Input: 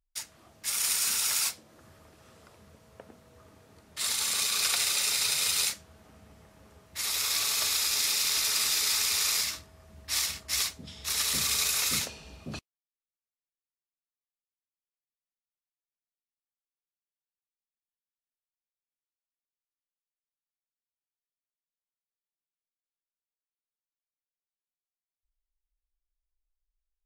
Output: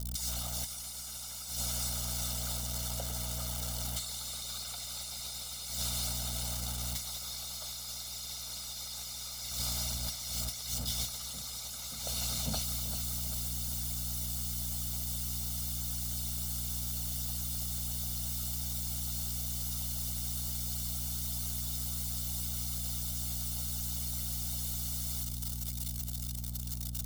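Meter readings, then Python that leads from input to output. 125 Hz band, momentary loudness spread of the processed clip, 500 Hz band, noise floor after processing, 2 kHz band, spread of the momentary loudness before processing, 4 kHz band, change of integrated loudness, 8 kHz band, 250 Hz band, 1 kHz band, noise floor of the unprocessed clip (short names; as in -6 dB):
+15.0 dB, 6 LU, -1.5 dB, -42 dBFS, -14.5 dB, 16 LU, -7.5 dB, -8.5 dB, -5.0 dB, +6.5 dB, -5.5 dB, under -85 dBFS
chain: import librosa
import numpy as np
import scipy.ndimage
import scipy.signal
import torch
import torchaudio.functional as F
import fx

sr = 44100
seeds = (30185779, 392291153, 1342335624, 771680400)

y = x + 0.5 * 10.0 ** (-20.5 / 20.0) * np.diff(np.sign(x), prepend=np.sign(x[:1]))
y = fx.dmg_buzz(y, sr, base_hz=60.0, harmonics=6, level_db=-38.0, tilt_db=-8, odd_only=False)
y = fx.echo_feedback(y, sr, ms=392, feedback_pct=58, wet_db=-10)
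y = fx.leveller(y, sr, passes=2)
y = y + 0.9 * np.pad(y, (int(1.4 * sr / 1000.0), 0))[:len(y)]
y = fx.over_compress(y, sr, threshold_db=-18.0, ratio=-0.5)
y = fx.hpss(y, sr, part='harmonic', gain_db=-9)
y = fx.lowpass(y, sr, hz=4000.0, slope=6)
y = fx.band_shelf(y, sr, hz=2000.0, db=-9.5, octaves=1.1)
y = y * 10.0 ** (-7.0 / 20.0)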